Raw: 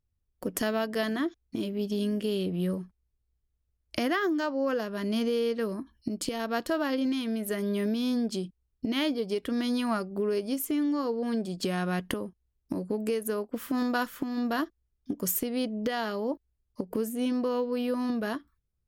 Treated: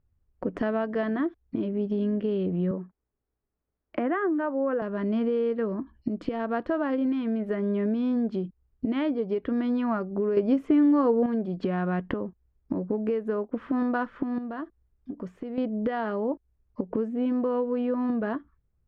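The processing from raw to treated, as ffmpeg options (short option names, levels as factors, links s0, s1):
-filter_complex "[0:a]asettb=1/sr,asplit=3[s0][s1][s2];[s0]atrim=end=2.714[s3];[s1]atrim=start=2.71:end=4.82,asetpts=PTS-STARTPTS,afade=t=in:d=0.004:c=qsin,afade=t=out:st=2.106:d=0.004:c=qsin,acrossover=split=170 2800:gain=0.112 1 0.0708[s4][s5][s6];[s4][s5][s6]amix=inputs=3:normalize=0[s7];[s2]atrim=start=4.816[s8];[s3][s7]acrossfade=d=0.004:c1=hsin:c2=qsin[s9];[s9][s8]acrossfade=d=0.004:c1=qsin:c2=hsin,asettb=1/sr,asplit=3[s10][s11][s12];[s10]atrim=end=14.384[s13];[s11]atrim=start=14.38:end=15.58,asetpts=PTS-STARTPTS,afade=t=in:d=0.004:c=qsin,afade=t=out:st=1.196:d=0.004:c=qsin,acompressor=threshold=0.00562:ratio=2:attack=3.2:release=140:knee=1:detection=peak[s14];[s12]atrim=start=15.576[s15];[s13][s14]acrossfade=d=0.004:c1=hsin:c2=qsin[s16];[s16][s15]acrossfade=d=0.004:c1=qsin:c2=hsin,asplit=3[s17][s18][s19];[s17]atrim=end=10.372[s20];[s18]atrim=start=10.368:end=11.262,asetpts=PTS-STARTPTS,volume=2.51[s21];[s19]atrim=start=11.258[s22];[s20][s21]acrossfade=d=0.004:c1=hsin:c2=hsin[s23];[s23][s22]acrossfade=d=0.004:c1=hsin:c2=hsin,lowpass=1900,aemphasis=mode=reproduction:type=75kf,acompressor=threshold=0.00708:ratio=1.5,volume=2.66"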